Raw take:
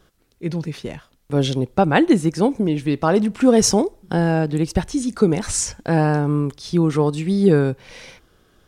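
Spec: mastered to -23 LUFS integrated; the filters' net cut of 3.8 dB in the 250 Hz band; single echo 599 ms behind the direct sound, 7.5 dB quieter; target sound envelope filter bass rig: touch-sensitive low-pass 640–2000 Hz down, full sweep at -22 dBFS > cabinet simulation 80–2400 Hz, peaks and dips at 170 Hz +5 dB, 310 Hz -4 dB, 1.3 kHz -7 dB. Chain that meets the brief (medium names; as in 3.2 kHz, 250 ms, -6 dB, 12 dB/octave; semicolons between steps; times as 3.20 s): peaking EQ 250 Hz -6.5 dB; delay 599 ms -7.5 dB; touch-sensitive low-pass 640–2000 Hz down, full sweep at -22 dBFS; cabinet simulation 80–2400 Hz, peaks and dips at 170 Hz +5 dB, 310 Hz -4 dB, 1.3 kHz -7 dB; trim -6 dB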